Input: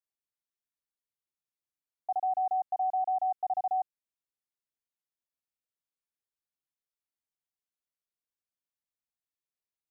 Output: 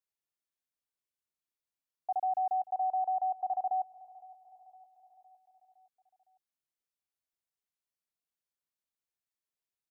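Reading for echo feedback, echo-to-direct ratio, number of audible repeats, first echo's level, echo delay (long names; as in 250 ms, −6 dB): 58%, −19.0 dB, 3, −21.0 dB, 511 ms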